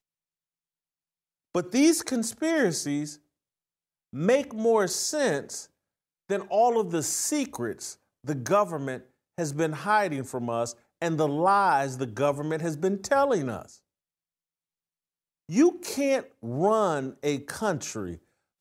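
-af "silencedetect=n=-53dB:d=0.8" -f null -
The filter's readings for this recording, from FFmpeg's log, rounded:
silence_start: 0.00
silence_end: 1.54 | silence_duration: 1.54
silence_start: 3.18
silence_end: 4.13 | silence_duration: 0.95
silence_start: 13.78
silence_end: 15.49 | silence_duration: 1.71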